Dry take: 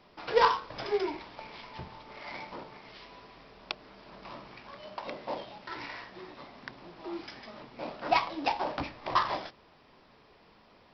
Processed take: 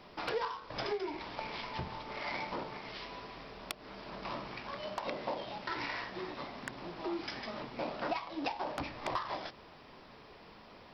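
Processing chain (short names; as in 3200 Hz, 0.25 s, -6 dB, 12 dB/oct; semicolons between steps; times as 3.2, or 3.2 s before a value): compressor 10:1, threshold -38 dBFS, peak gain reduction 20.5 dB; wavefolder -27 dBFS; gain +5 dB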